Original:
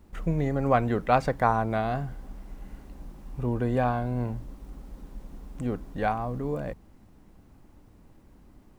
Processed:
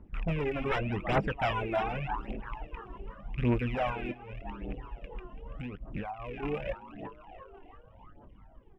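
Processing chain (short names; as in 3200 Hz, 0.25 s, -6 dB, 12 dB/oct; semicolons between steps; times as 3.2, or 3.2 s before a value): rattling part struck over -35 dBFS, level -26 dBFS; frequency-shifting echo 0.334 s, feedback 60%, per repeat +83 Hz, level -12 dB; 4.11–6.43 compressor 12:1, threshold -32 dBFS, peak gain reduction 11.5 dB; doubler 20 ms -13.5 dB; wavefolder -20.5 dBFS; polynomial smoothing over 25 samples; phaser 0.85 Hz, delay 3 ms, feedback 52%; reverb removal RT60 0.85 s; mismatched tape noise reduction decoder only; gain -3 dB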